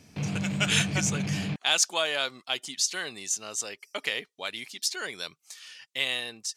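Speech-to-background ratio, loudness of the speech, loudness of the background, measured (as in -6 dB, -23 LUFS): 2.5 dB, -29.0 LUFS, -31.5 LUFS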